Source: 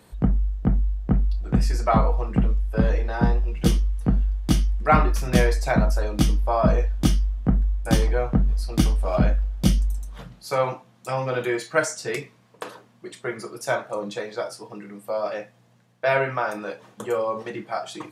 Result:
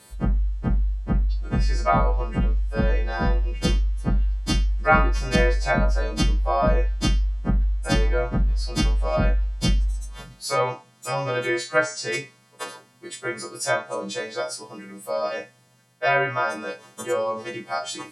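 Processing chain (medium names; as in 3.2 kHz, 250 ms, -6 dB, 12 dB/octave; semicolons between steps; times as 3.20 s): partials quantised in pitch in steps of 2 st; low-pass that closes with the level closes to 2.7 kHz, closed at -15 dBFS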